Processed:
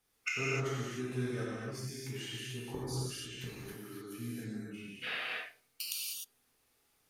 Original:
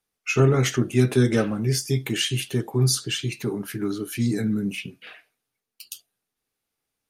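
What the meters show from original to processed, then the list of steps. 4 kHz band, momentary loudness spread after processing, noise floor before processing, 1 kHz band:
-12.5 dB, 11 LU, -84 dBFS, -10.0 dB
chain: dynamic bell 1.3 kHz, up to +5 dB, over -42 dBFS, Q 1.1; inverted gate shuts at -24 dBFS, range -26 dB; gated-style reverb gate 330 ms flat, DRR -7.5 dB; trim +1 dB

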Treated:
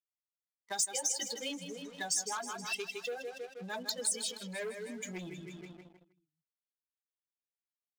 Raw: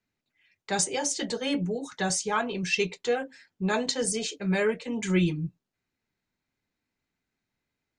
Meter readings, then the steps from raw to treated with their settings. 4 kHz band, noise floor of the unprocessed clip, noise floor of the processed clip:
-5.5 dB, under -85 dBFS, under -85 dBFS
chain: expander on every frequency bin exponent 2; on a send: feedback delay 158 ms, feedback 54%, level -10.5 dB; on the sum: level-controlled noise filter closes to 1.5 kHz, open at -28.5 dBFS; waveshaping leveller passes 2; compression 5:1, threshold -32 dBFS, peak gain reduction 12.5 dB; tone controls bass -10 dB, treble +9 dB; trim -5 dB

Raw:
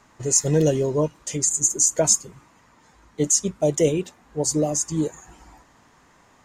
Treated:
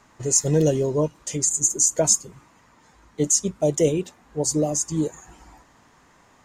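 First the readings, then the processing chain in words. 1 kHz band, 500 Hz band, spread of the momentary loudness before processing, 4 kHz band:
-1.0 dB, -0.5 dB, 9 LU, -0.5 dB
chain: dynamic bell 1.9 kHz, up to -3 dB, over -37 dBFS, Q 0.78

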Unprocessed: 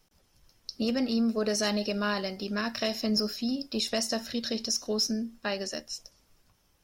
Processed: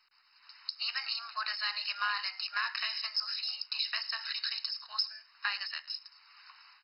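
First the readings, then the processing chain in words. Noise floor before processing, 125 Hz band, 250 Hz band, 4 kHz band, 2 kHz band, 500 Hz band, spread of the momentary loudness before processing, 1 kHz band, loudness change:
-68 dBFS, under -40 dB, under -40 dB, 0.0 dB, +2.0 dB, -32.0 dB, 7 LU, -1.0 dB, -4.0 dB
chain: steep high-pass 1 kHz 48 dB/octave; level rider gain up to 14.5 dB; in parallel at -2 dB: peak limiter -14.5 dBFS, peak gain reduction 10.5 dB; on the sum: compression 2:1, threshold -43 dBFS, peak gain reduction 18.5 dB; companded quantiser 8-bit; on a send: delay 106 ms -21.5 dB; on the sum: MP2 32 kbps 48 kHz

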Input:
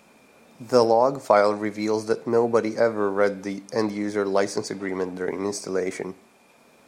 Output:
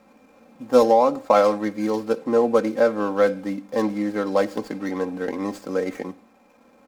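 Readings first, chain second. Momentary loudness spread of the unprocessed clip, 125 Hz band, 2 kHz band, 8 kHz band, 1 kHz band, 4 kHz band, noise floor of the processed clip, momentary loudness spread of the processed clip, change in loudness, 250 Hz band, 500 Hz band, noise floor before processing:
10 LU, -1.5 dB, -1.0 dB, no reading, +2.0 dB, -2.0 dB, -56 dBFS, 12 LU, +1.5 dB, +3.0 dB, +1.5 dB, -56 dBFS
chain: median filter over 15 samples; comb 3.8 ms, depth 73%

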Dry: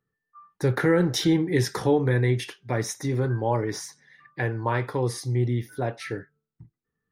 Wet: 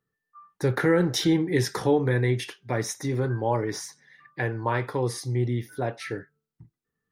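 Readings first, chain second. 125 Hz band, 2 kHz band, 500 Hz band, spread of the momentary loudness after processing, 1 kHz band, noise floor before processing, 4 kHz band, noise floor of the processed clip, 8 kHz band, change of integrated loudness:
-2.0 dB, 0.0 dB, -0.5 dB, 11 LU, 0.0 dB, -85 dBFS, 0.0 dB, -85 dBFS, 0.0 dB, -1.0 dB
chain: bass shelf 140 Hz -3.5 dB

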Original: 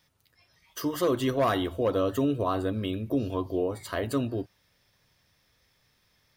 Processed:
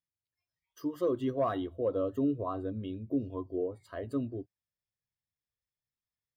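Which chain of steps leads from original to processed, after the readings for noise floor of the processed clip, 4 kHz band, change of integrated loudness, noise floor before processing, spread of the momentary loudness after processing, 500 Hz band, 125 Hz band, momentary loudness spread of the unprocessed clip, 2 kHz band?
under -85 dBFS, -16.0 dB, -5.5 dB, -69 dBFS, 9 LU, -5.0 dB, -7.5 dB, 7 LU, -13.5 dB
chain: spectral contrast expander 1.5:1; trim -4.5 dB

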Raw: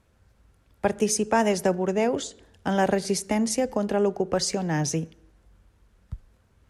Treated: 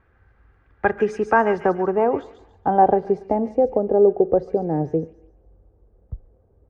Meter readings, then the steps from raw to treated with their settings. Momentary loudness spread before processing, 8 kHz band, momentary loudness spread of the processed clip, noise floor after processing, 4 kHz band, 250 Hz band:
15 LU, under -25 dB, 8 LU, -59 dBFS, under -15 dB, +1.0 dB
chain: low-pass sweep 1.7 kHz -> 560 Hz, 0.77–3.89 s; comb 2.5 ms, depth 37%; feedback echo behind a high-pass 142 ms, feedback 31%, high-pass 2.3 kHz, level -6 dB; trim +2 dB

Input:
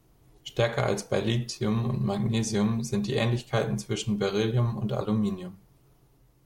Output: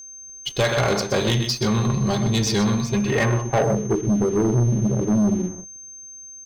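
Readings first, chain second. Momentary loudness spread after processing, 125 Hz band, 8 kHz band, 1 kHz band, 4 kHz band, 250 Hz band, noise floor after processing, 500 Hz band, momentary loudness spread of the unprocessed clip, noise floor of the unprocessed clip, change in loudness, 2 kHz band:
16 LU, +6.0 dB, +11.0 dB, +8.0 dB, +8.0 dB, +7.0 dB, -41 dBFS, +6.0 dB, 5 LU, -62 dBFS, +7.0 dB, +8.0 dB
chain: dynamic bell 1.3 kHz, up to +4 dB, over -44 dBFS, Q 1.2; on a send: delay 126 ms -10 dB; on the sum: low-pass sweep 4.7 kHz -> 310 Hz, 2.75–4.04 s; waveshaping leveller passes 3; whistle 6.3 kHz -34 dBFS; trim -3.5 dB

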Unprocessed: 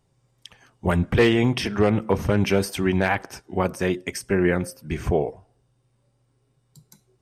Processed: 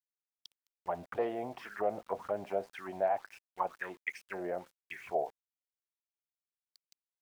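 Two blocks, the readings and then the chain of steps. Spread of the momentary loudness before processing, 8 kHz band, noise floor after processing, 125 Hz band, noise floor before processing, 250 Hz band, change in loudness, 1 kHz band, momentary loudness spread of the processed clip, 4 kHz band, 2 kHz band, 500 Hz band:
10 LU, under -25 dB, under -85 dBFS, -31.0 dB, -68 dBFS, -23.5 dB, -14.5 dB, -7.0 dB, 10 LU, -24.0 dB, -15.5 dB, -12.0 dB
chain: auto-wah 660–4700 Hz, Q 6.8, down, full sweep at -16.5 dBFS; small samples zeroed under -55.5 dBFS

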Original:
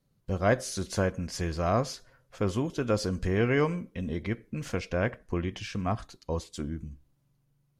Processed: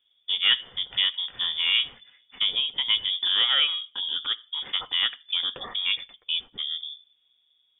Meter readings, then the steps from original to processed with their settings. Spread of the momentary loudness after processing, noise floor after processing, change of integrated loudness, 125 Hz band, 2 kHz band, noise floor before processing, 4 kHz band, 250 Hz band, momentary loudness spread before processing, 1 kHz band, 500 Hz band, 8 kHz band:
9 LU, -68 dBFS, +6.5 dB, under -25 dB, +5.5 dB, -72 dBFS, +23.5 dB, under -20 dB, 10 LU, -6.0 dB, -21.5 dB, under -40 dB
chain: frequency inversion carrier 3.5 kHz; trim +2.5 dB

